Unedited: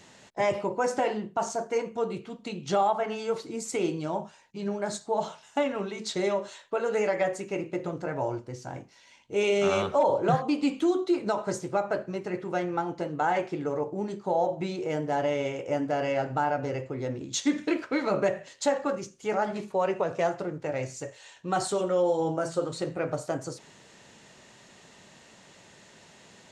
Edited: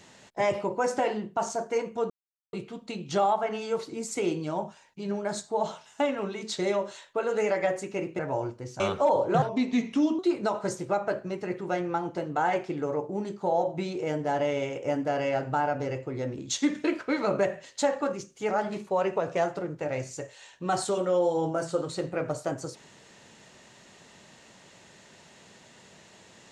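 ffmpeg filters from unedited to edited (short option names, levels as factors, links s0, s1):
-filter_complex "[0:a]asplit=6[s0][s1][s2][s3][s4][s5];[s0]atrim=end=2.1,asetpts=PTS-STARTPTS,afade=t=out:st=2.096:d=0.004:c=hsin,apad=pad_dur=0.43[s6];[s1]atrim=start=2.1:end=7.762,asetpts=PTS-STARTPTS,afade=t=in:d=0.004:c=hsin[s7];[s2]atrim=start=8.068:end=8.682[s8];[s3]atrim=start=9.738:end=10.364[s9];[s4]atrim=start=10.36:end=11.02,asetpts=PTS-STARTPTS,asetrate=37926,aresample=44100,atrim=end_sample=33844,asetpts=PTS-STARTPTS[s10];[s5]atrim=start=11.016[s11];[s6][s7]concat=n=2:v=0:a=1[s12];[s12][s8]acrossfade=d=0.004:c1=hsin:c2=hsin[s13];[s13][s9]acrossfade=d=0.004:c1=hsin:c2=hsin[s14];[s14][s10]acrossfade=d=0.004:c1=hsin:c2=hsin[s15];[s15][s11]acrossfade=d=0.004:c1=hsin:c2=hsin"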